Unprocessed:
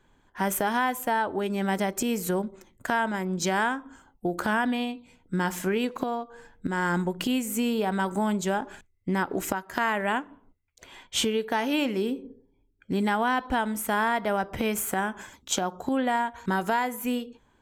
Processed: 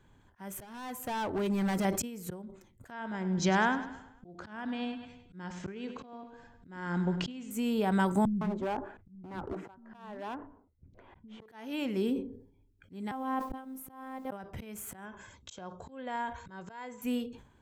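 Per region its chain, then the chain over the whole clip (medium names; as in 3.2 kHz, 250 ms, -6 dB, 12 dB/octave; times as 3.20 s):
0.61–1.85 s: band-stop 3.4 kHz, Q 16 + hard clipper -27.5 dBFS
2.91–7.51 s: steep low-pass 6.6 kHz + feedback delay 101 ms, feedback 49%, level -14.5 dB
8.25–11.46 s: low-pass 1.1 kHz + overload inside the chain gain 26 dB + bands offset in time lows, highs 160 ms, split 240 Hz
13.11–14.31 s: high-order bell 3.5 kHz -10 dB 2.8 oct + robot voice 263 Hz + word length cut 10-bit, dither none
15.05–17.02 s: brick-wall FIR low-pass 7.9 kHz + comb 1.9 ms, depth 34%
whole clip: slow attack 705 ms; peaking EQ 100 Hz +9 dB 1.9 oct; decay stretcher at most 100 dB/s; trim -2.5 dB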